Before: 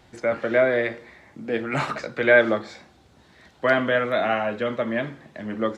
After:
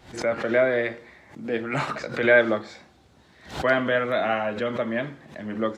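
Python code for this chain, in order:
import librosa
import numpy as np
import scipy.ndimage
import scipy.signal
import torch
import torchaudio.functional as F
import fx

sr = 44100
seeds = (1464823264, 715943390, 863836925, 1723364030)

y = fx.pre_swell(x, sr, db_per_s=130.0)
y = y * 10.0 ** (-1.5 / 20.0)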